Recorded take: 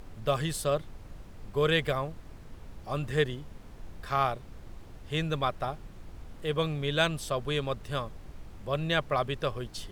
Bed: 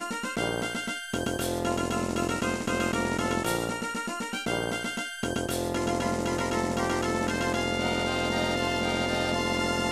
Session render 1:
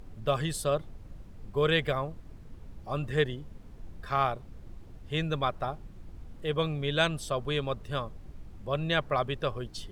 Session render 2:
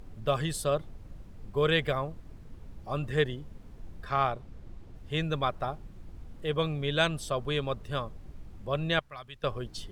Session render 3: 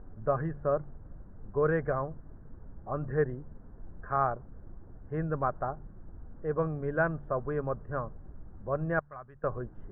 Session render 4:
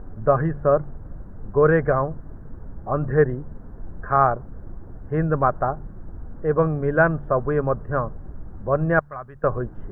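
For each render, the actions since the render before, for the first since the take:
denoiser 7 dB, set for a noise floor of -48 dBFS
4.04–4.96 high shelf 9300 Hz -8 dB; 8.99–9.44 passive tone stack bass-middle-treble 5-5-5
elliptic low-pass 1600 Hz, stop band 60 dB; de-hum 71.97 Hz, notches 2
gain +10.5 dB

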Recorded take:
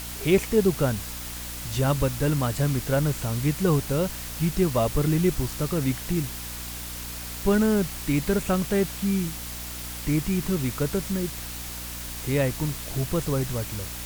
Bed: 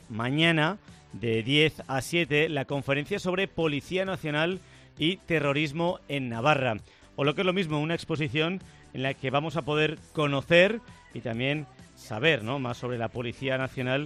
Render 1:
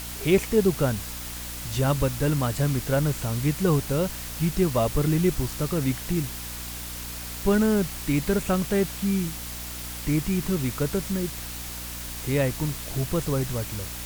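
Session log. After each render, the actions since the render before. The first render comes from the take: nothing audible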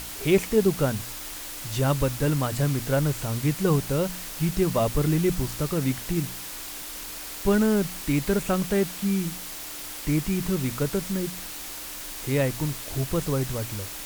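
de-hum 60 Hz, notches 4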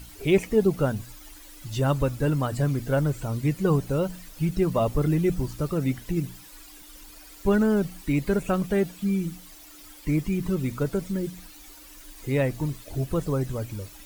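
denoiser 14 dB, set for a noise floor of -37 dBFS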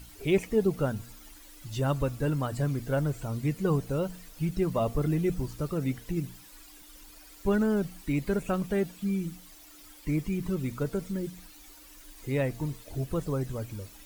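resonator 230 Hz, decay 1.3 s, mix 40%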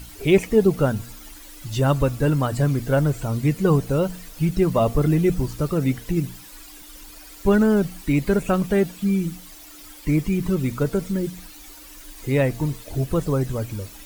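gain +8.5 dB

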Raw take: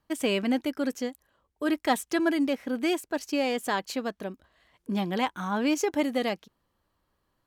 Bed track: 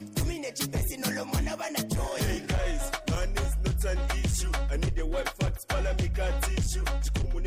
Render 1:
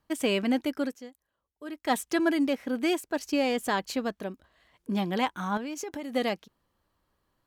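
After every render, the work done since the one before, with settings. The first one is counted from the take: 0.82–1.94 dip -12.5 dB, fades 0.13 s; 3.24–4.14 low shelf 110 Hz +10.5 dB; 5.57–6.14 compressor 12:1, threshold -32 dBFS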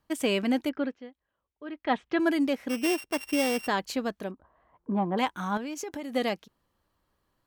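0.69–2.19 LPF 3400 Hz 24 dB/oct; 2.69–3.68 sample sorter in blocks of 16 samples; 4.31–5.18 synth low-pass 1000 Hz, resonance Q 2.2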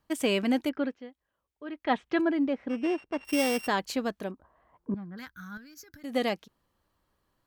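2.21–3.25 tape spacing loss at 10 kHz 31 dB; 4.94–6.04 EQ curve 100 Hz 0 dB, 390 Hz -21 dB, 930 Hz -28 dB, 1500 Hz -4 dB, 2900 Hz -21 dB, 4800 Hz -3 dB, 8700 Hz -18 dB, 13000 Hz 0 dB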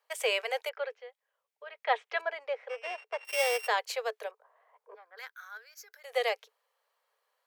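Chebyshev high-pass 430 Hz, order 8; bell 2200 Hz +4 dB 0.36 oct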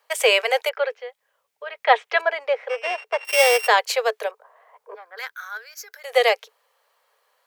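gain +12 dB

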